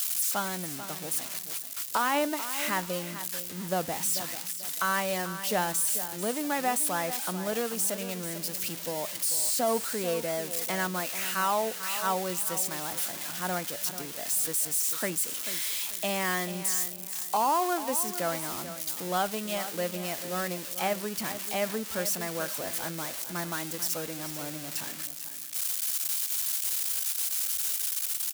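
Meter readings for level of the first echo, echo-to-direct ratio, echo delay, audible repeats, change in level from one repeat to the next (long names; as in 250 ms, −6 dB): −12.0 dB, −11.5 dB, 440 ms, 2, −11.0 dB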